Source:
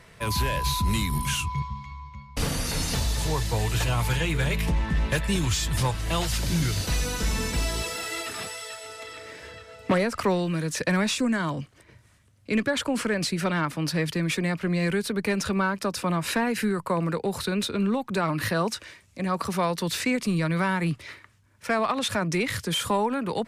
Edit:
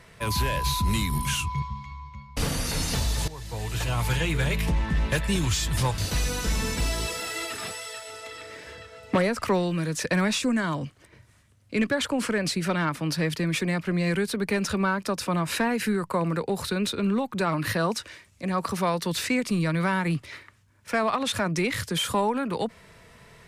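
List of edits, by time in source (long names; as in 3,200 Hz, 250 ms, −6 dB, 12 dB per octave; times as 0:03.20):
0:03.28–0:04.12: fade in, from −17.5 dB
0:05.98–0:06.74: remove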